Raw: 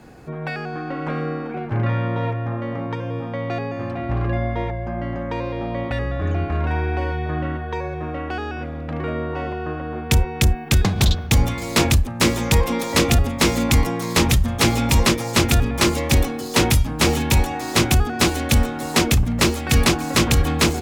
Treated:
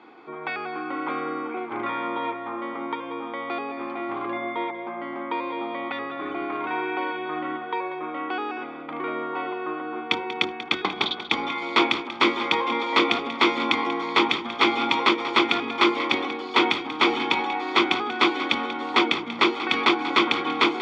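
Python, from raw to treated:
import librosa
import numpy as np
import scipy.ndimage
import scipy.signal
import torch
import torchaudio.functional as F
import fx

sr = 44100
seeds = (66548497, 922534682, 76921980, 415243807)

y = scipy.signal.sosfilt(scipy.signal.ellip(3, 1.0, 80, [330.0, 3500.0], 'bandpass', fs=sr, output='sos'), x)
y = y + 0.62 * np.pad(y, (int(0.9 * sr / 1000.0), 0))[:len(y)]
y = fx.echo_feedback(y, sr, ms=188, feedback_pct=23, wet_db=-13.0)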